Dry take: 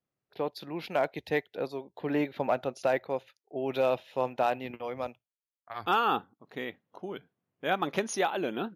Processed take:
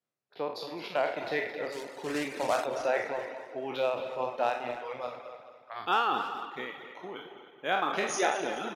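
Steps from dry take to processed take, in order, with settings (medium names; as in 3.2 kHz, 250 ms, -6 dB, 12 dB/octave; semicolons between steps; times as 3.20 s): spectral sustain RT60 1.37 s; high-pass 87 Hz 24 dB/octave; 1.72–2.66 s: companded quantiser 4-bit; low-pass 8.9 kHz 12 dB/octave; bass shelf 240 Hz -10 dB; on a send: feedback delay 215 ms, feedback 52%, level -9 dB; on the sum: reverb removal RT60 1.2 s; speakerphone echo 280 ms, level -12 dB; trim -1.5 dB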